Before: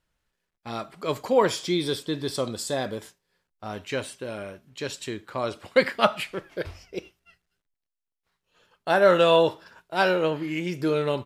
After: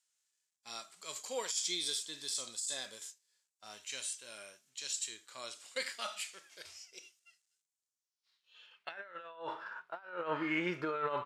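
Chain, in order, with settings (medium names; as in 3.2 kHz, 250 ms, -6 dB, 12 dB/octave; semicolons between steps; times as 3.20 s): band-pass sweep 7.3 kHz -> 1.3 kHz, 7.87–9.38 s; compressor with a negative ratio -40 dBFS, ratio -0.5; harmonic-percussive split percussive -10 dB; trim +7.5 dB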